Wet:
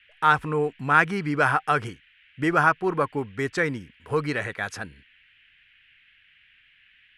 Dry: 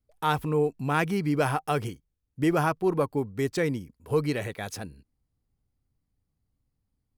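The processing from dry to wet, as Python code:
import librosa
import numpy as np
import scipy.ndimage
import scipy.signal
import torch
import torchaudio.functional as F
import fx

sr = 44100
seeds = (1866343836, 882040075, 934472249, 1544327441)

y = scipy.signal.sosfilt(scipy.signal.butter(4, 10000.0, 'lowpass', fs=sr, output='sos'), x)
y = fx.peak_eq(y, sr, hz=1500.0, db=13.5, octaves=1.2)
y = fx.dmg_noise_band(y, sr, seeds[0], low_hz=1600.0, high_hz=3100.0, level_db=-57.0)
y = y * 10.0 ** (-1.5 / 20.0)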